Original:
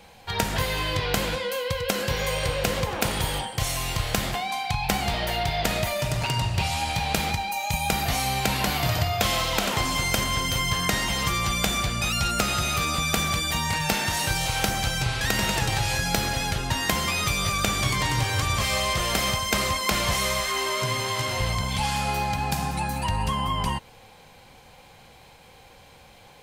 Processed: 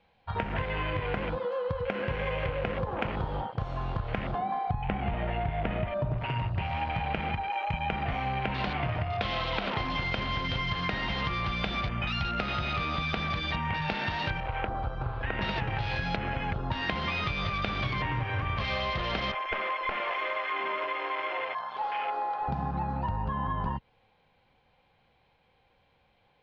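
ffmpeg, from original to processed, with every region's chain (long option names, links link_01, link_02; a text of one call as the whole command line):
ffmpeg -i in.wav -filter_complex "[0:a]asettb=1/sr,asplit=3[link_01][link_02][link_03];[link_01]atrim=end=4.384[link_04];[link_02]atrim=start=4.38:end=6.18,asetpts=PTS-STARTPTS,afade=type=in:duration=0.004:curve=qsin,afade=type=out:start_time=1.796:duration=0.004:curve=qsin,lowpass=3600,lowshelf=frequency=480:gain=6.5[link_05];[link_03]atrim=start=6.176[link_06];[link_04][link_05]acrossfade=duration=0.004:curve1=hsin:curve2=qsin[link_07];[link_07][link_06]acrossfade=duration=0.004:curve1=qsin:curve2=hsin,asettb=1/sr,asplit=3[link_08][link_09][link_10];[link_08]atrim=end=14.404[link_11];[link_09]atrim=start=14.4:end=15.41,asetpts=PTS-STARTPTS,afade=type=in:duration=0.004:curve=qsin,afade=type=out:start_time=1.006:duration=0.004:curve=qsin,lowpass=frequency=1600:poles=1,equalizer=frequency=170:width=1.6:gain=-11[link_12];[link_10]atrim=start=15.406[link_13];[link_11][link_12]acrossfade=duration=0.004:curve1=hsin:curve2=qsin[link_14];[link_14][link_13]acrossfade=duration=0.004:curve1=qsin:curve2=hsin,asettb=1/sr,asplit=3[link_15][link_16][link_17];[link_15]atrim=end=19.324[link_18];[link_16]atrim=start=19.32:end=22.48,asetpts=PTS-STARTPTS,afade=type=in:duration=0.004:curve=qsin,afade=type=out:start_time=3.156:duration=0.004:curve=qsin,highpass=440,equalizer=frequency=7500:width=1.7:gain=-5,aeval=exprs='clip(val(0),-1,0.0473)':channel_layout=same[link_19];[link_17]atrim=start=22.476[link_20];[link_18][link_19]acrossfade=duration=0.004:curve1=hsin:curve2=qsin[link_21];[link_21][link_20]acrossfade=duration=0.004:curve1=qsin:curve2=hsin,afwtdn=0.0316,lowpass=frequency=3700:width=0.5412,lowpass=frequency=3700:width=1.3066,acompressor=threshold=-27dB:ratio=6" out.wav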